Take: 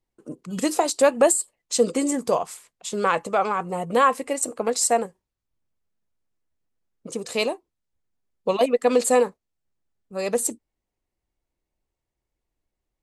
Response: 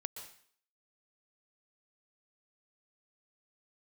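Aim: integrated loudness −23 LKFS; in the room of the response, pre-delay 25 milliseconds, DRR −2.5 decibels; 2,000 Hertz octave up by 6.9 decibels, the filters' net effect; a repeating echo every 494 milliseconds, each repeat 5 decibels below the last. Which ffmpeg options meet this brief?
-filter_complex "[0:a]equalizer=frequency=2000:width_type=o:gain=9,aecho=1:1:494|988|1482|1976|2470|2964|3458:0.562|0.315|0.176|0.0988|0.0553|0.031|0.0173,asplit=2[link_01][link_02];[1:a]atrim=start_sample=2205,adelay=25[link_03];[link_02][link_03]afir=irnorm=-1:irlink=0,volume=4.5dB[link_04];[link_01][link_04]amix=inputs=2:normalize=0,volume=-6.5dB"

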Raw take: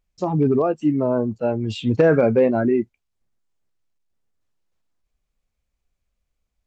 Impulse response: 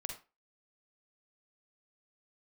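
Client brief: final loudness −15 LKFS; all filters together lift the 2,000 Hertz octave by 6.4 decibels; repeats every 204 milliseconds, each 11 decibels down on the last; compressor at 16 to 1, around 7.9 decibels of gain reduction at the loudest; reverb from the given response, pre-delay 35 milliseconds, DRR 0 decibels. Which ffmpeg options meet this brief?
-filter_complex "[0:a]equalizer=frequency=2000:width_type=o:gain=9,acompressor=threshold=-18dB:ratio=16,aecho=1:1:204|408|612:0.282|0.0789|0.0221,asplit=2[link_01][link_02];[1:a]atrim=start_sample=2205,adelay=35[link_03];[link_02][link_03]afir=irnorm=-1:irlink=0,volume=1dB[link_04];[link_01][link_04]amix=inputs=2:normalize=0,volume=6dB"

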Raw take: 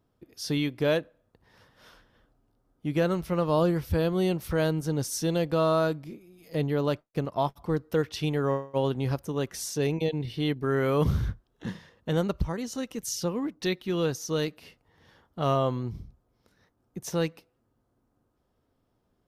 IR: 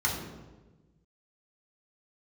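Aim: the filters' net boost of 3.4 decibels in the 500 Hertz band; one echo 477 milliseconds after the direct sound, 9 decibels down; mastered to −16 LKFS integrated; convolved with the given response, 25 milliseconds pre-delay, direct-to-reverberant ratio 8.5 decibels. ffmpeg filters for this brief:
-filter_complex "[0:a]equalizer=frequency=500:width_type=o:gain=4,aecho=1:1:477:0.355,asplit=2[link_01][link_02];[1:a]atrim=start_sample=2205,adelay=25[link_03];[link_02][link_03]afir=irnorm=-1:irlink=0,volume=-18dB[link_04];[link_01][link_04]amix=inputs=2:normalize=0,volume=9.5dB"

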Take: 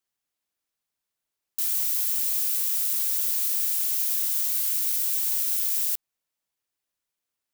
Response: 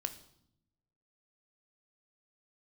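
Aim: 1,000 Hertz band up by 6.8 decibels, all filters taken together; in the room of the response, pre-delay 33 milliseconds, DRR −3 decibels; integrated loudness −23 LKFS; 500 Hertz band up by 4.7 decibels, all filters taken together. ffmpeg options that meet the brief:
-filter_complex "[0:a]equalizer=frequency=500:width_type=o:gain=3,equalizer=frequency=1000:width_type=o:gain=8,asplit=2[link_01][link_02];[1:a]atrim=start_sample=2205,adelay=33[link_03];[link_02][link_03]afir=irnorm=-1:irlink=0,volume=3dB[link_04];[link_01][link_04]amix=inputs=2:normalize=0,volume=-5dB"

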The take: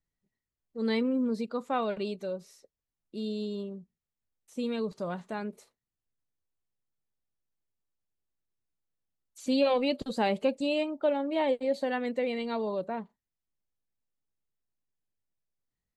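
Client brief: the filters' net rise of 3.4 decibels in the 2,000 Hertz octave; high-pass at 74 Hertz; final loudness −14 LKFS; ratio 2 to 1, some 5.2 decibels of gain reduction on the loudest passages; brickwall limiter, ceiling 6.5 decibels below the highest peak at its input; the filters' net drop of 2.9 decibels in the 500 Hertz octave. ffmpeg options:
ffmpeg -i in.wav -af "highpass=74,equalizer=frequency=500:width_type=o:gain=-3.5,equalizer=frequency=2000:width_type=o:gain=4.5,acompressor=threshold=-33dB:ratio=2,volume=23dB,alimiter=limit=-3dB:level=0:latency=1" out.wav

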